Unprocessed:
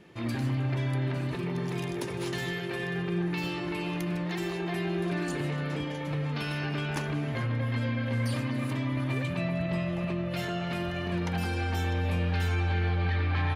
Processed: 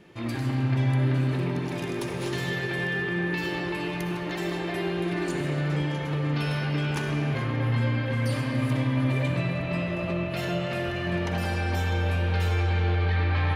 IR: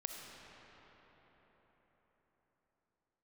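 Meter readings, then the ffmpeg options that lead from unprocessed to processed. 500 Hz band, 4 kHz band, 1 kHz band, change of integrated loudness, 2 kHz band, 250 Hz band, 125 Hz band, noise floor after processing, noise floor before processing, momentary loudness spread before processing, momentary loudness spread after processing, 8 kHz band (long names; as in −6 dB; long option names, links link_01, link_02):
+3.5 dB, +3.0 dB, +3.0 dB, +3.5 dB, +4.5 dB, +2.5 dB, +4.0 dB, −31 dBFS, −34 dBFS, 4 LU, 5 LU, +2.0 dB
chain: -filter_complex "[1:a]atrim=start_sample=2205[link_01];[0:a][link_01]afir=irnorm=-1:irlink=0,volume=4.5dB"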